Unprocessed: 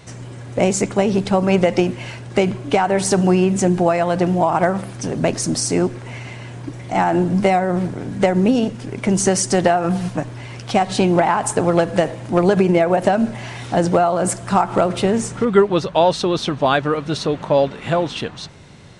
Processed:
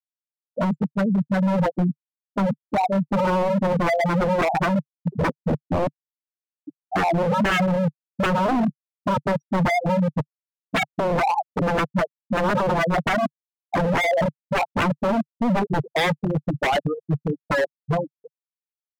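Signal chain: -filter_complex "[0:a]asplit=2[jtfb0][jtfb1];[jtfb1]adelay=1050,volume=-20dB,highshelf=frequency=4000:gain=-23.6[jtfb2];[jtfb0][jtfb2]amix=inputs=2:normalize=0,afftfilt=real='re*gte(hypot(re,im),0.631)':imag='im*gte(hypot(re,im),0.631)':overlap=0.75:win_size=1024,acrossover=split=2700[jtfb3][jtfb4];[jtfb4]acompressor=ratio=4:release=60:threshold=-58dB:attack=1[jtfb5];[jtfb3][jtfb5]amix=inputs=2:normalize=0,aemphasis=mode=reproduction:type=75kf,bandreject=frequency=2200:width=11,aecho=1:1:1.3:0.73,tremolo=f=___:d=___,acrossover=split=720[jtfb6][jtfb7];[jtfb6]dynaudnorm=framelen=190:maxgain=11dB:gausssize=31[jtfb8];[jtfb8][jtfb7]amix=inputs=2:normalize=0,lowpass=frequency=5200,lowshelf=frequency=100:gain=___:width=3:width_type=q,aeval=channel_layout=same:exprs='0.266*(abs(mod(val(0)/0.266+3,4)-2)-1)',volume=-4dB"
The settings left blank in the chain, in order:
1.2, 0.31, -13.5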